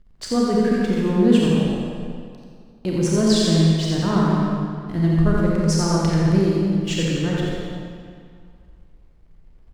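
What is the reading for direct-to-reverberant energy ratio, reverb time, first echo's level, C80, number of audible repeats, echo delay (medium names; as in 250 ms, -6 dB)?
-5.5 dB, 2.2 s, -4.0 dB, -2.5 dB, 1, 87 ms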